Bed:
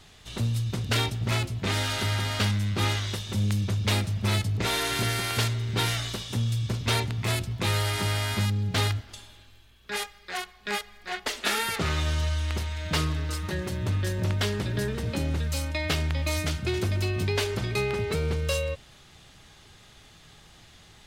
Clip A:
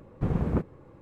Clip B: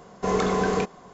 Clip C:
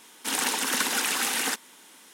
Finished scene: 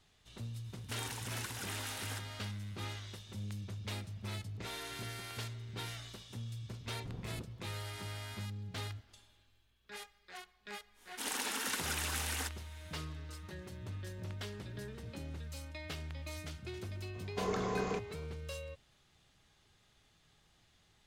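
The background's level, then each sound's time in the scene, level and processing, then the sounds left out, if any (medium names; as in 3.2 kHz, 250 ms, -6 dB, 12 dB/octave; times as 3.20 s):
bed -16.5 dB
0.64 s: add C -17.5 dB
6.84 s: add A -13 dB + compression, threshold -29 dBFS
10.93 s: add C -11.5 dB, fades 0.10 s
17.14 s: add B -12.5 dB + resampled via 16 kHz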